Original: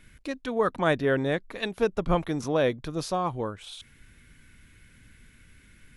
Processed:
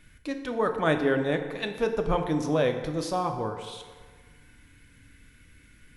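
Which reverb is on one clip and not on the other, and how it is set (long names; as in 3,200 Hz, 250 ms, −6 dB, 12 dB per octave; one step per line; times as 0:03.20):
feedback delay network reverb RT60 1.6 s, low-frequency decay 0.8×, high-frequency decay 0.6×, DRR 5 dB
level −1.5 dB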